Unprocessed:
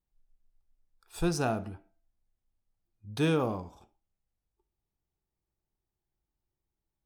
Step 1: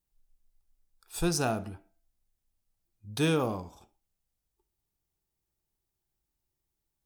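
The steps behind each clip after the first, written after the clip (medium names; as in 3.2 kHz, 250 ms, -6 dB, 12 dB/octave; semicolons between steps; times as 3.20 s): treble shelf 4.3 kHz +9 dB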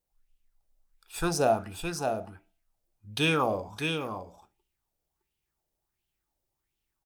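hum notches 60/120/180 Hz; delay 613 ms -5 dB; sweeping bell 1.4 Hz 530–3000 Hz +13 dB; trim -1.5 dB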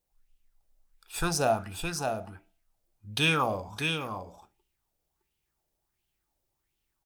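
dynamic bell 390 Hz, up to -7 dB, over -41 dBFS, Q 0.76; trim +2.5 dB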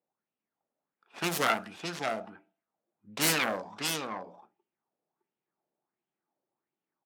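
self-modulated delay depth 0.65 ms; level-controlled noise filter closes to 1.3 kHz, open at -25.5 dBFS; high-pass 180 Hz 24 dB/octave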